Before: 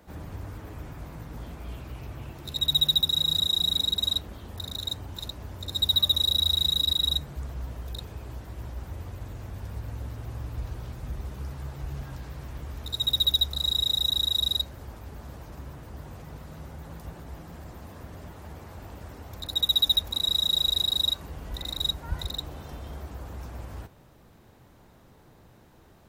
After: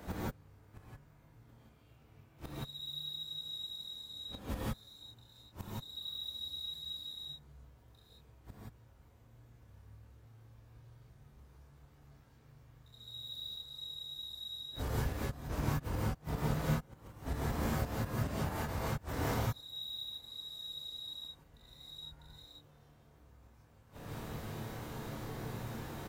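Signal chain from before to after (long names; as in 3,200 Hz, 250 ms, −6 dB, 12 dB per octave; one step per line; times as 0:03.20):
double-tracking delay 27 ms −4.5 dB
gate with flip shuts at −31 dBFS, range −34 dB
reverb whose tail is shaped and stops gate 200 ms rising, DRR −7 dB
level +4 dB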